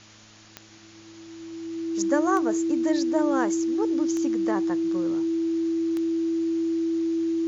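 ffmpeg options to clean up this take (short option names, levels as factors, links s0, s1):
-af "adeclick=t=4,bandreject=f=107.1:t=h:w=4,bandreject=f=214.2:t=h:w=4,bandreject=f=321.3:t=h:w=4,bandreject=f=330:w=30,afwtdn=0.004"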